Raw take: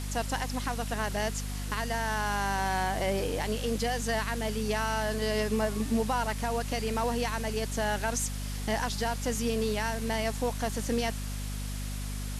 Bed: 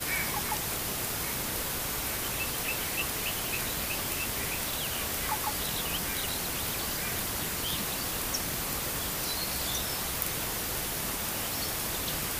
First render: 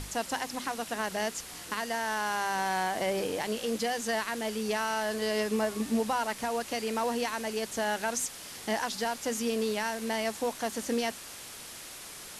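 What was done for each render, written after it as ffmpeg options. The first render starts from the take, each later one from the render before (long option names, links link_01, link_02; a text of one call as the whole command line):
ffmpeg -i in.wav -af "bandreject=frequency=50:width_type=h:width=6,bandreject=frequency=100:width_type=h:width=6,bandreject=frequency=150:width_type=h:width=6,bandreject=frequency=200:width_type=h:width=6,bandreject=frequency=250:width_type=h:width=6" out.wav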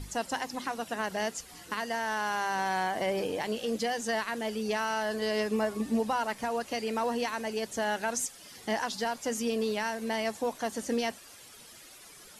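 ffmpeg -i in.wav -af "afftdn=noise_reduction=11:noise_floor=-45" out.wav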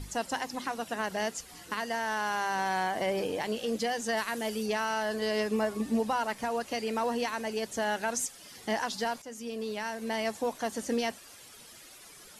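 ffmpeg -i in.wav -filter_complex "[0:a]asettb=1/sr,asplit=3[link_01][link_02][link_03];[link_01]atrim=end=4.174[link_04];[link_02]atrim=start=4.17:end=4.66,asetpts=PTS-STARTPTS,afade=type=in:duration=0.004:curve=qsin,afade=type=out:start_time=0.486:duration=0.004:curve=qsin,highshelf=frequency=6900:gain=9[link_05];[link_03]atrim=start=4.656[link_06];[link_04][link_05]acrossfade=duration=0.004:curve1=hsin:curve2=qsin[link_07];[link_07][link_06]acrossfade=duration=0.004:curve1=qsin:curve2=hsin,asplit=2[link_08][link_09];[link_08]atrim=end=9.22,asetpts=PTS-STARTPTS,afade=type=out:start_time=9.216:duration=0.004:curve=hsin:silence=0.211349[link_10];[link_09]atrim=start=9.22,asetpts=PTS-STARTPTS,afade=type=in:duration=1.03:silence=0.211349[link_11];[link_10][link_11]concat=n=2:v=0:a=1" out.wav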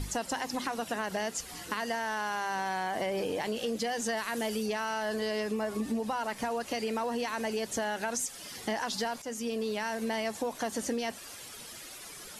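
ffmpeg -i in.wav -filter_complex "[0:a]asplit=2[link_01][link_02];[link_02]alimiter=level_in=4dB:limit=-24dB:level=0:latency=1:release=17,volume=-4dB,volume=-1dB[link_03];[link_01][link_03]amix=inputs=2:normalize=0,acompressor=threshold=-29dB:ratio=6" out.wav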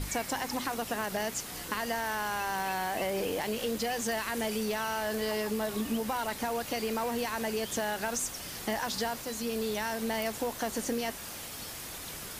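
ffmpeg -i in.wav -i bed.wav -filter_complex "[1:a]volume=-11dB[link_01];[0:a][link_01]amix=inputs=2:normalize=0" out.wav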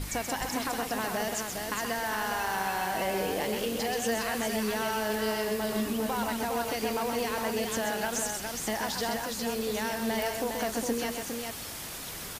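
ffmpeg -i in.wav -af "aecho=1:1:129|409:0.501|0.562" out.wav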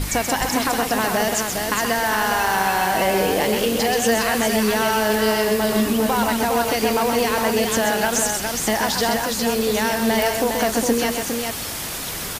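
ffmpeg -i in.wav -af "volume=11dB" out.wav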